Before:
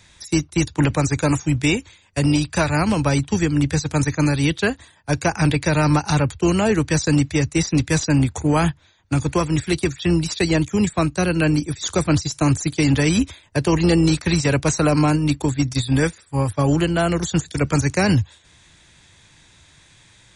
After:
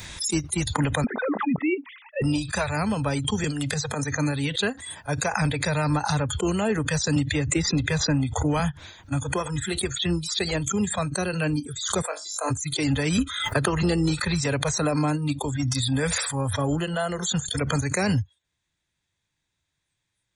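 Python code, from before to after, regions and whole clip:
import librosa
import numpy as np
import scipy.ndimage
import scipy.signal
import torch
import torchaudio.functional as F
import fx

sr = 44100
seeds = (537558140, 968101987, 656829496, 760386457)

y = fx.chain(x, sr, fx.sine_speech(),
    fx.high_shelf(hz=2500.0, db=-10.5),
    fx.band_squash(depth_pct=40), at=(1.04, 2.22))
y = fx.chain(y, sr, fx.highpass(hz=88.0, slope=24),
    fx.transient(attack_db=-12, sustain_db=8),
    fx.band_squash(depth_pct=100), at=(3.44, 4.04))
y = fx.chain(y, sr, fx.air_absorb(metres=66.0),
    fx.band_squash(depth_pct=100), at=(7.16, 8.6))
y = fx.chain(y, sr, fx.highpass(hz=430.0, slope=24),
    fx.peak_eq(hz=3900.0, db=-4.5, octaves=2.6),
    fx.room_flutter(wall_m=3.5, rt60_s=0.2), at=(12.02, 12.51))
y = fx.chain(y, sr, fx.peak_eq(hz=1300.0, db=12.0, octaves=0.34),
    fx.band_squash(depth_pct=100), at=(13.18, 13.83))
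y = fx.chain(y, sr, fx.highpass(hz=46.0, slope=12),
    fx.sustainer(db_per_s=30.0), at=(15.52, 16.65))
y = fx.noise_reduce_blind(y, sr, reduce_db=22)
y = fx.pre_swell(y, sr, db_per_s=54.0)
y = y * librosa.db_to_amplitude(-6.0)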